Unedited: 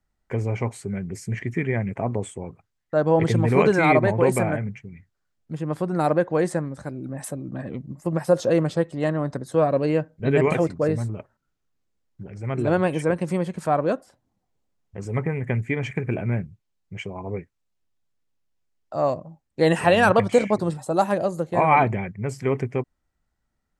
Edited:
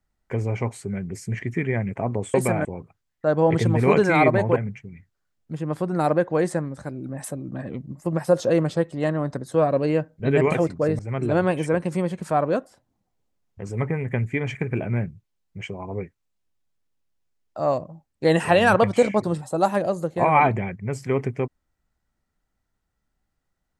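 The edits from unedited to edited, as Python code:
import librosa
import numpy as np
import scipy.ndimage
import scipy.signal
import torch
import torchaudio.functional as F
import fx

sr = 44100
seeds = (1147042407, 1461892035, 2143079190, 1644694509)

y = fx.edit(x, sr, fx.move(start_s=4.25, length_s=0.31, to_s=2.34),
    fx.cut(start_s=10.99, length_s=1.36), tone=tone)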